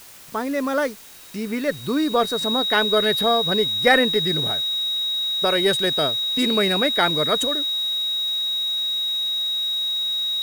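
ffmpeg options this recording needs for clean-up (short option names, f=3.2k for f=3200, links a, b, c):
-af "bandreject=f=3.8k:w=30,afwtdn=0.0063"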